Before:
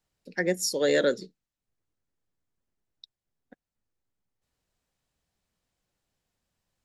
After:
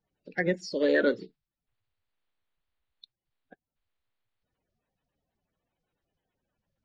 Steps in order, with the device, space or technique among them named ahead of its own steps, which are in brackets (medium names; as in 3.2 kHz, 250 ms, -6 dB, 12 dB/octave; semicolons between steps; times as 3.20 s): clip after many re-uploads (low-pass 4.1 kHz 24 dB/octave; coarse spectral quantiser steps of 30 dB)